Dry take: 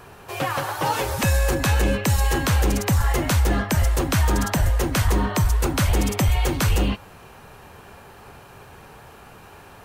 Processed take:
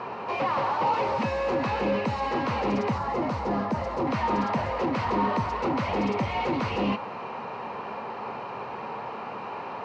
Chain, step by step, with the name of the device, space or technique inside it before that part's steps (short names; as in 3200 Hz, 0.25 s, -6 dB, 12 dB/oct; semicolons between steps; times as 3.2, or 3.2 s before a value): overdrive pedal into a guitar cabinet (overdrive pedal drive 28 dB, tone 2100 Hz, clips at -11.5 dBFS; speaker cabinet 110–4400 Hz, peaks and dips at 120 Hz +4 dB, 220 Hz +9 dB, 500 Hz +4 dB, 970 Hz +6 dB, 1600 Hz -9 dB, 3400 Hz -9 dB); 2.98–4.07 bell 2600 Hz -7.5 dB 1.7 oct; gain -8.5 dB